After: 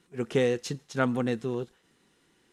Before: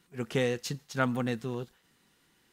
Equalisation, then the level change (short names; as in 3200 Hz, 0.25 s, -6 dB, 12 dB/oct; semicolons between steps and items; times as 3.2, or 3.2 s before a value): LPF 11000 Hz 24 dB/oct; bell 380 Hz +6 dB 1.2 oct; notch 4600 Hz, Q 17; 0.0 dB